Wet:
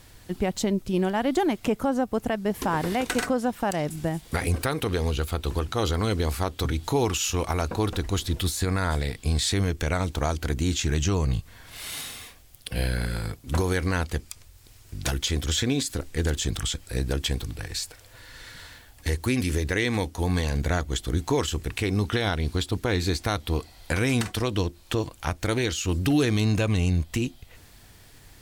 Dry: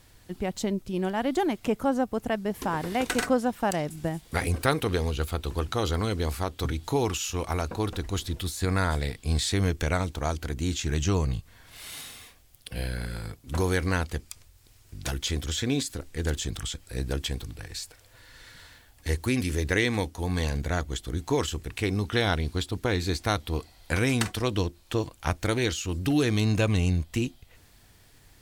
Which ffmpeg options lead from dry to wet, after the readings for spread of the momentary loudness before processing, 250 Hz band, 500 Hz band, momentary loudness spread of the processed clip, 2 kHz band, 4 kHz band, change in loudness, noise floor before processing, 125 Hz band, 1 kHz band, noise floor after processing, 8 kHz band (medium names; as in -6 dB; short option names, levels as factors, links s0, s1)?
11 LU, +2.0 dB, +1.5 dB, 8 LU, +1.0 dB, +2.5 dB, +2.0 dB, -57 dBFS, +2.0 dB, +1.0 dB, -52 dBFS, +3.5 dB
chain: -af "alimiter=limit=0.112:level=0:latency=1:release=227,volume=1.88"